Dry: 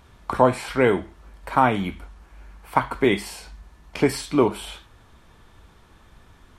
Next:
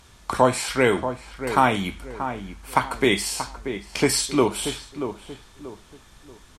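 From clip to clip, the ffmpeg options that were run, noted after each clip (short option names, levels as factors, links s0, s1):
-filter_complex "[0:a]equalizer=f=7300:t=o:w=2.3:g=13,asplit=2[s0][s1];[s1]adelay=633,lowpass=f=1500:p=1,volume=0.355,asplit=2[s2][s3];[s3]adelay=633,lowpass=f=1500:p=1,volume=0.35,asplit=2[s4][s5];[s5]adelay=633,lowpass=f=1500:p=1,volume=0.35,asplit=2[s6][s7];[s7]adelay=633,lowpass=f=1500:p=1,volume=0.35[s8];[s2][s4][s6][s8]amix=inputs=4:normalize=0[s9];[s0][s9]amix=inputs=2:normalize=0,volume=0.841"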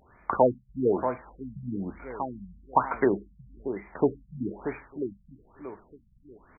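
-af "lowshelf=f=190:g=-10.5,afftfilt=real='re*lt(b*sr/1024,200*pow(2500/200,0.5+0.5*sin(2*PI*1.1*pts/sr)))':imag='im*lt(b*sr/1024,200*pow(2500/200,0.5+0.5*sin(2*PI*1.1*pts/sr)))':win_size=1024:overlap=0.75"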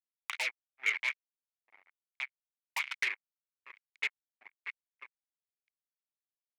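-af "acrusher=bits=3:mix=0:aa=0.5,highpass=f=2200:t=q:w=9.9,aeval=exprs='0.282*(cos(1*acos(clip(val(0)/0.282,-1,1)))-cos(1*PI/2))+0.0631*(cos(3*acos(clip(val(0)/0.282,-1,1)))-cos(3*PI/2))+0.0141*(cos(5*acos(clip(val(0)/0.282,-1,1)))-cos(5*PI/2))':c=same,volume=0.708"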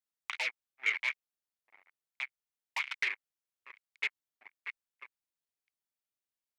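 -filter_complex "[0:a]acrossover=split=6300[s0][s1];[s1]acompressor=threshold=0.002:ratio=4:attack=1:release=60[s2];[s0][s2]amix=inputs=2:normalize=0"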